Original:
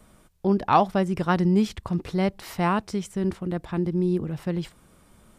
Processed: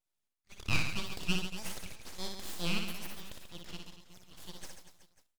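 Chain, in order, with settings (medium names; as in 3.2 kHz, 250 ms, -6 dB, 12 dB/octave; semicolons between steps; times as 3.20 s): steep high-pass 1.2 kHz 72 dB/octave; gate -53 dBFS, range -25 dB; band-stop 4.2 kHz, Q 6.2; full-wave rectifier; reverse bouncing-ball echo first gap 60 ms, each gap 1.3×, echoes 5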